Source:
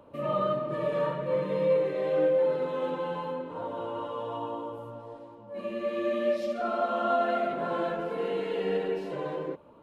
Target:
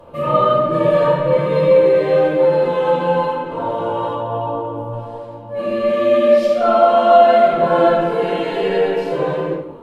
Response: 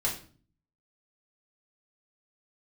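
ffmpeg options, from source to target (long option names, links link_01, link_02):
-filter_complex "[0:a]asettb=1/sr,asplit=3[link_01][link_02][link_03];[link_01]atrim=end=4.144[link_04];[link_02]atrim=start=4.14:end=4.93,asetpts=PTS-STARTPTS,afade=type=in:duration=0.004:curve=qsin,afade=type=out:start_time=0.786:duration=0.004:curve=qsin,highshelf=frequency=2100:gain=-11[link_05];[link_03]atrim=start=4.926[link_06];[link_04][link_05]acrossfade=duration=0.004:curve1=hsin:curve2=qsin[link_07];[link_07][link_06]acrossfade=duration=0.004:curve1=qsin:curve2=hsin[link_08];[1:a]atrim=start_sample=2205,asetrate=33957,aresample=44100[link_09];[link_08][link_09]afir=irnorm=-1:irlink=0,volume=5.5dB"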